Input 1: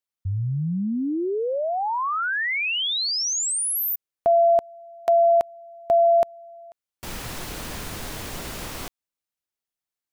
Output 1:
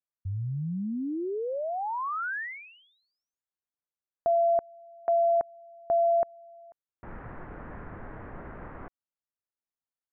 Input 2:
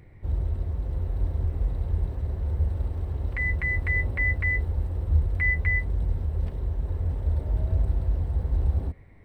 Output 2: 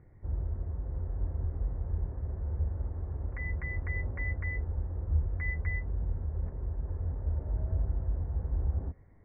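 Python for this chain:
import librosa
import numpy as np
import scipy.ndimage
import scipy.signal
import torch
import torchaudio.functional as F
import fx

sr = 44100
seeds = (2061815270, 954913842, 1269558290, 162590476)

y = scipy.signal.sosfilt(scipy.signal.butter(6, 1800.0, 'lowpass', fs=sr, output='sos'), x)
y = y * librosa.db_to_amplitude(-6.5)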